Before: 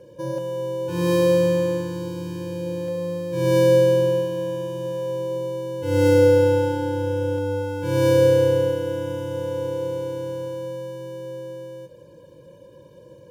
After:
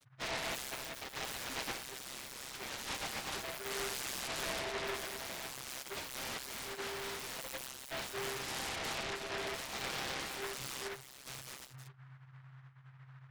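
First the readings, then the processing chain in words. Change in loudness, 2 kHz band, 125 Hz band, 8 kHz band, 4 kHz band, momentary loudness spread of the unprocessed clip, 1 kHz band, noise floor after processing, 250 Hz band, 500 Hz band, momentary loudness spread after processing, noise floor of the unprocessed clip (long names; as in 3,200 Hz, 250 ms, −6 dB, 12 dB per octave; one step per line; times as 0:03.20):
−18.0 dB, −5.5 dB, −27.0 dB, 0.0 dB, −2.5 dB, 16 LU, −9.5 dB, −57 dBFS, −25.0 dB, −26.5 dB, 15 LU, −47 dBFS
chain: gate on every frequency bin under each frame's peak −25 dB weak
dynamic equaliser 750 Hz, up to +4 dB, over −57 dBFS, Q 1.2
downward compressor 8 to 1, threshold −45 dBFS, peak gain reduction 15 dB
mains hum 50 Hz, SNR 15 dB
on a send: bucket-brigade delay 340 ms, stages 4,096, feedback 52%, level −9.5 dB
on the sum: spectral peaks only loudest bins 4
channel vocoder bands 32, saw 132 Hz
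short delay modulated by noise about 1,300 Hz, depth 0.33 ms
level +15.5 dB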